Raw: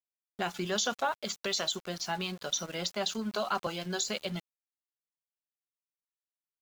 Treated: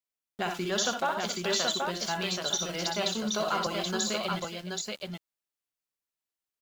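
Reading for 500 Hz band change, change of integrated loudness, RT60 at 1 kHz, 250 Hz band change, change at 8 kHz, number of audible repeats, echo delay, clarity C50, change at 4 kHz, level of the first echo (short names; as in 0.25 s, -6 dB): +4.0 dB, +3.0 dB, none, +3.5 dB, +3.5 dB, 3, 61 ms, none, +3.5 dB, -5.5 dB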